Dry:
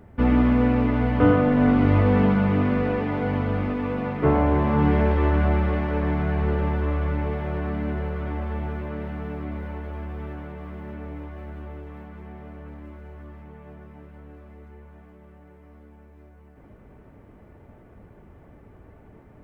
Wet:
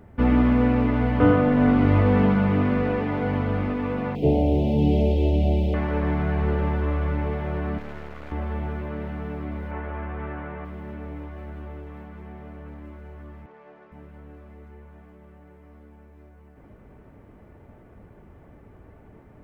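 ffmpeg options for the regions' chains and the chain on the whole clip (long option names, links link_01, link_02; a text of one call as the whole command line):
ffmpeg -i in.wav -filter_complex "[0:a]asettb=1/sr,asplit=3[link_01][link_02][link_03];[link_01]atrim=end=4.154[link_04];[link_02]atrim=start=4.15:end=5.74,asetpts=PTS-STARTPTS,afade=type=in:duration=0.004:curve=qsin,afade=type=out:start_time=1.586:duration=0.004:curve=qsin,asuperstop=centerf=1400:order=8:qfactor=0.72,highshelf=frequency=2700:gain=8.5[link_05];[link_03]atrim=start=5.736[link_06];[link_04][link_05]acrossfade=duration=0.004:curve1=hsin:curve2=qsin[link_07];[link_07][link_06]acrossfade=duration=0.004:curve1=qsin:curve2=hsin,asettb=1/sr,asplit=3[link_08][link_09][link_10];[link_08]atrim=end=7.784[link_11];[link_09]atrim=start=7.78:end=8.32,asetpts=PTS-STARTPTS,afade=type=in:duration=0.004:curve=qsin,afade=type=out:start_time=0.536:duration=0.004:curve=qsin,lowshelf=frequency=440:gain=-7.5,aeval=exprs='max(val(0),0)':channel_layout=same[link_12];[link_10]atrim=start=8.316[link_13];[link_11][link_12]acrossfade=duration=0.004:curve1=hsin:curve2=qsin[link_14];[link_14][link_13]acrossfade=duration=0.004:curve1=qsin:curve2=hsin,asettb=1/sr,asplit=3[link_15][link_16][link_17];[link_15]atrim=end=9.714[link_18];[link_16]atrim=start=9.71:end=10.65,asetpts=PTS-STARTPTS,afade=type=in:duration=0.004:curve=qsin,afade=type=out:start_time=0.936:duration=0.004:curve=qsin,lowpass=2300,equalizer=frequency=1700:width=0.41:gain=8[link_19];[link_17]atrim=start=10.646[link_20];[link_18][link_19]acrossfade=duration=0.004:curve1=hsin:curve2=qsin[link_21];[link_21][link_20]acrossfade=duration=0.004:curve1=qsin:curve2=hsin,asettb=1/sr,asplit=3[link_22][link_23][link_24];[link_22]atrim=end=13.464[link_25];[link_23]atrim=start=13.46:end=13.92,asetpts=PTS-STARTPTS,afade=type=in:duration=0.004:curve=qsin,afade=type=out:start_time=0.456:duration=0.004:curve=qsin,aeval=exprs='val(0)+0.5*0.00112*sgn(val(0))':channel_layout=same,highpass=390,lowpass=3300[link_26];[link_24]atrim=start=13.916[link_27];[link_25][link_26]acrossfade=duration=0.004:curve1=hsin:curve2=qsin[link_28];[link_28][link_27]acrossfade=duration=0.004:curve1=qsin:curve2=hsin" out.wav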